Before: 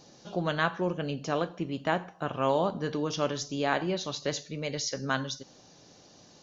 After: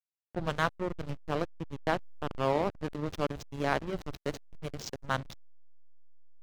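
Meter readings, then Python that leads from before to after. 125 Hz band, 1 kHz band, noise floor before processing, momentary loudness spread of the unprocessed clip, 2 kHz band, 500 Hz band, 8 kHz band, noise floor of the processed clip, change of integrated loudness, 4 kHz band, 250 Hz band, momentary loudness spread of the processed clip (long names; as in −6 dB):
−2.5 dB, −2.5 dB, −57 dBFS, 7 LU, −3.5 dB, −3.5 dB, can't be measured, below −85 dBFS, −3.5 dB, −7.5 dB, −4.5 dB, 10 LU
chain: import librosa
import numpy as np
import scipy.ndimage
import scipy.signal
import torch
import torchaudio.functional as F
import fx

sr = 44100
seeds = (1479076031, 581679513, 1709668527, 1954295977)

y = fx.hum_notches(x, sr, base_hz=60, count=3)
y = fx.backlash(y, sr, play_db=-23.0)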